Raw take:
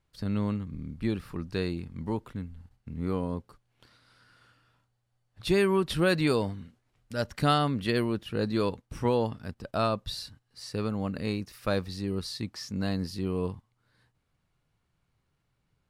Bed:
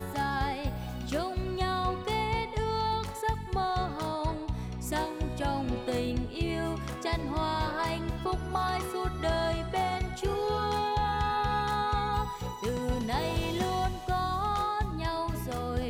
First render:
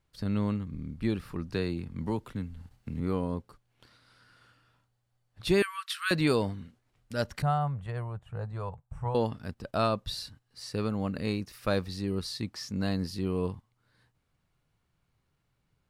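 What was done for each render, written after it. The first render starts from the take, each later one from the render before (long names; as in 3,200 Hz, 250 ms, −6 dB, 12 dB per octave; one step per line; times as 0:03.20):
0:01.50–0:03.00: multiband upward and downward compressor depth 40%
0:05.62–0:06.11: Butterworth high-pass 1,100 Hz 72 dB per octave
0:07.42–0:09.15: drawn EQ curve 150 Hz 0 dB, 220 Hz −20 dB, 310 Hz −23 dB, 740 Hz 0 dB, 5,200 Hz −27 dB, 7,800 Hz −10 dB, 11,000 Hz −24 dB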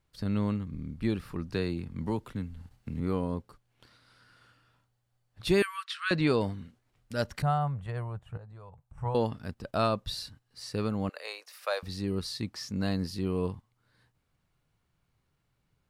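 0:05.84–0:06.41: high-frequency loss of the air 85 metres
0:08.37–0:08.98: downward compressor 3 to 1, threshold −49 dBFS
0:11.09–0:11.83: Butterworth high-pass 530 Hz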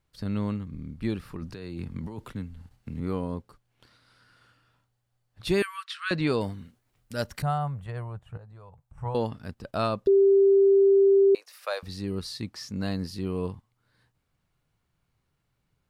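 0:01.35–0:02.32: compressor whose output falls as the input rises −36 dBFS
0:06.32–0:07.85: high-shelf EQ 9,400 Hz +10 dB
0:10.07–0:11.35: beep over 393 Hz −15 dBFS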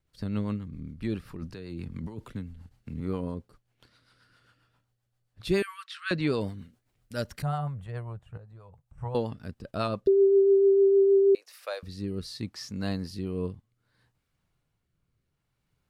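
rotating-speaker cabinet horn 7.5 Hz, later 0.65 Hz, at 0:10.81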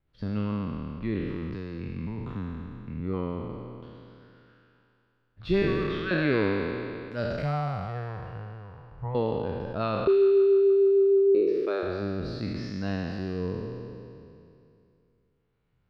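peak hold with a decay on every bin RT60 2.60 s
high-frequency loss of the air 270 metres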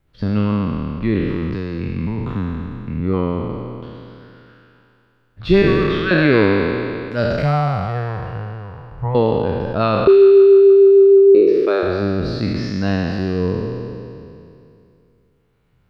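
level +11.5 dB
brickwall limiter −2 dBFS, peak gain reduction 1.5 dB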